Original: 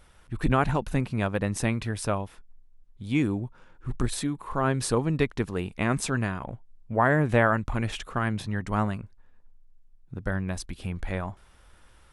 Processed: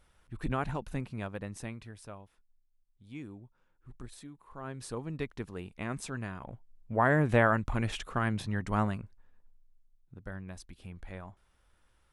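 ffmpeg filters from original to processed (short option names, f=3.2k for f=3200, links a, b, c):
-af "volume=6.5dB,afade=t=out:st=0.97:d=1.08:silence=0.334965,afade=t=in:st=4.49:d=0.8:silence=0.398107,afade=t=in:st=6.2:d=0.97:silence=0.398107,afade=t=out:st=8.84:d=1.32:silence=0.316228"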